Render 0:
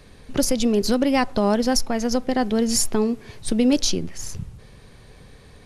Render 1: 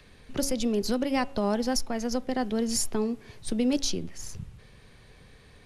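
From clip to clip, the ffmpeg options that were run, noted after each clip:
ffmpeg -i in.wav -filter_complex "[0:a]bandreject=frequency=277.2:width_type=h:width=4,bandreject=frequency=554.4:width_type=h:width=4,bandreject=frequency=831.6:width_type=h:width=4,bandreject=frequency=1108.8:width_type=h:width=4,bandreject=frequency=1386:width_type=h:width=4,bandreject=frequency=1663.2:width_type=h:width=4,bandreject=frequency=1940.4:width_type=h:width=4,bandreject=frequency=2217.6:width_type=h:width=4,bandreject=frequency=2494.8:width_type=h:width=4,bandreject=frequency=2772:width_type=h:width=4,bandreject=frequency=3049.2:width_type=h:width=4,bandreject=frequency=3326.4:width_type=h:width=4,bandreject=frequency=3603.6:width_type=h:width=4,bandreject=frequency=3880.8:width_type=h:width=4,acrossover=split=280|1600|3400[link_01][link_02][link_03][link_04];[link_03]acompressor=mode=upward:threshold=-49dB:ratio=2.5[link_05];[link_01][link_02][link_05][link_04]amix=inputs=4:normalize=0,volume=-7dB" out.wav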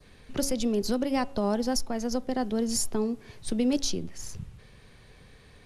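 ffmpeg -i in.wav -af "adynamicequalizer=threshold=0.00355:dfrequency=2300:dqfactor=0.99:tfrequency=2300:tqfactor=0.99:attack=5:release=100:ratio=0.375:range=2.5:mode=cutabove:tftype=bell" out.wav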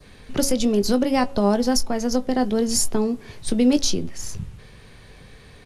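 ffmpeg -i in.wav -filter_complex "[0:a]asplit=2[link_01][link_02];[link_02]adelay=20,volume=-11.5dB[link_03];[link_01][link_03]amix=inputs=2:normalize=0,volume=7dB" out.wav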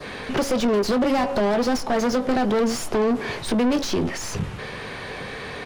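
ffmpeg -i in.wav -filter_complex "[0:a]acompressor=threshold=-20dB:ratio=6,asplit=2[link_01][link_02];[link_02]highpass=frequency=720:poles=1,volume=29dB,asoftclip=type=tanh:threshold=-13dB[link_03];[link_01][link_03]amix=inputs=2:normalize=0,lowpass=frequency=1400:poles=1,volume=-6dB" out.wav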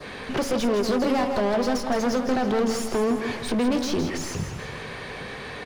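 ffmpeg -i in.wav -af "aecho=1:1:163|326|489|652|815:0.398|0.175|0.0771|0.0339|0.0149,volume=-3dB" out.wav

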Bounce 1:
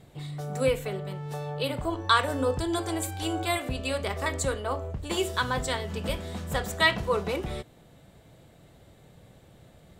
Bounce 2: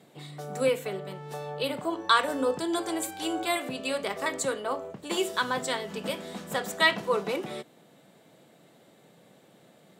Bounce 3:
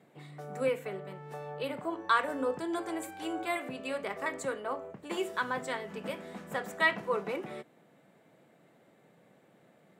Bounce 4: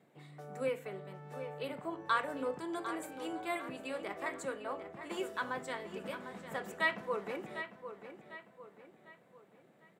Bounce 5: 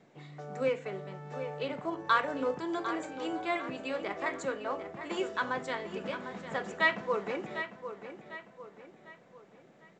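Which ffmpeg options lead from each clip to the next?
ffmpeg -i in.wav -af "highpass=frequency=180:width=0.5412,highpass=frequency=180:width=1.3066" out.wav
ffmpeg -i in.wav -af "highshelf=frequency=2800:width_type=q:width=1.5:gain=-6.5,volume=-5dB" out.wav
ffmpeg -i in.wav -filter_complex "[0:a]asplit=2[link_01][link_02];[link_02]adelay=750,lowpass=frequency=4400:poles=1,volume=-10dB,asplit=2[link_03][link_04];[link_04]adelay=750,lowpass=frequency=4400:poles=1,volume=0.43,asplit=2[link_05][link_06];[link_06]adelay=750,lowpass=frequency=4400:poles=1,volume=0.43,asplit=2[link_07][link_08];[link_08]adelay=750,lowpass=frequency=4400:poles=1,volume=0.43,asplit=2[link_09][link_10];[link_10]adelay=750,lowpass=frequency=4400:poles=1,volume=0.43[link_11];[link_01][link_03][link_05][link_07][link_09][link_11]amix=inputs=6:normalize=0,volume=-5dB" out.wav
ffmpeg -i in.wav -af "volume=5dB" -ar 16000 -c:a pcm_mulaw out.wav

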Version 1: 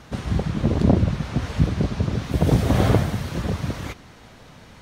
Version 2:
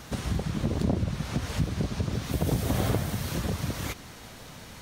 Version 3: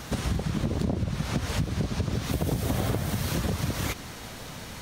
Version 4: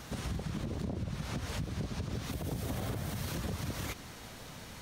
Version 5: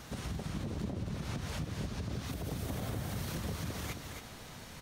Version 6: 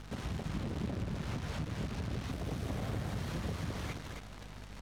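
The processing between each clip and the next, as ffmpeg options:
ffmpeg -i in.wav -af "acompressor=threshold=-30dB:ratio=2,aemphasis=mode=production:type=50kf" out.wav
ffmpeg -i in.wav -af "acompressor=threshold=-29dB:ratio=4,volume=5dB" out.wav
ffmpeg -i in.wav -af "alimiter=limit=-20dB:level=0:latency=1:release=25,volume=-7.5dB" out.wav
ffmpeg -i in.wav -af "aecho=1:1:268:0.501,volume=-2dB" out.wav
ffmpeg -i in.wav -af "acrusher=bits=8:dc=4:mix=0:aa=0.000001,aemphasis=mode=reproduction:type=50fm,aeval=exprs='val(0)+0.00355*(sin(2*PI*50*n/s)+sin(2*PI*2*50*n/s)/2+sin(2*PI*3*50*n/s)/3+sin(2*PI*4*50*n/s)/4+sin(2*PI*5*50*n/s)/5)':channel_layout=same" out.wav

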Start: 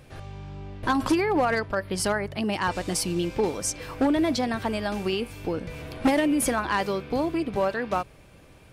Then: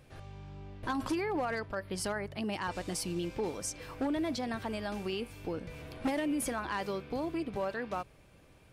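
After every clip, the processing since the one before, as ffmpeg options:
ffmpeg -i in.wav -af "alimiter=limit=-18dB:level=0:latency=1:release=36,volume=-8dB" out.wav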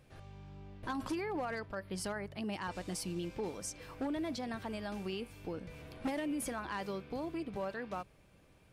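ffmpeg -i in.wav -af "equalizer=frequency=190:width_type=o:width=0.25:gain=4,volume=-4.5dB" out.wav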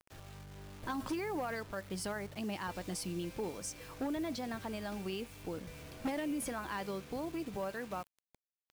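ffmpeg -i in.wav -af "acrusher=bits=8:mix=0:aa=0.000001" out.wav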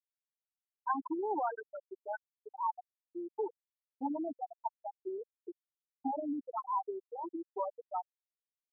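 ffmpeg -i in.wav -filter_complex "[0:a]acrossover=split=3100[link_01][link_02];[link_02]acompressor=threshold=-59dB:ratio=4:attack=1:release=60[link_03];[link_01][link_03]amix=inputs=2:normalize=0,highpass=frequency=220:width=0.5412,highpass=frequency=220:width=1.3066,equalizer=frequency=230:width_type=q:width=4:gain=-10,equalizer=frequency=320:width_type=q:width=4:gain=-5,equalizer=frequency=540:width_type=q:width=4:gain=-6,equalizer=frequency=930:width_type=q:width=4:gain=5,equalizer=frequency=2100:width_type=q:width=4:gain=-4,equalizer=frequency=4100:width_type=q:width=4:gain=-9,lowpass=frequency=8500:width=0.5412,lowpass=frequency=8500:width=1.3066,afftfilt=real='re*gte(hypot(re,im),0.0631)':imag='im*gte(hypot(re,im),0.0631)':win_size=1024:overlap=0.75,volume=7.5dB" out.wav

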